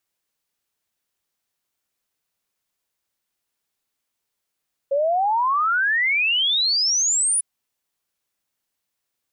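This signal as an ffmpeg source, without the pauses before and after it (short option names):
-f lavfi -i "aevalsrc='0.141*clip(min(t,2.5-t)/0.01,0,1)*sin(2*PI*540*2.5/log(10000/540)*(exp(log(10000/540)*t/2.5)-1))':d=2.5:s=44100"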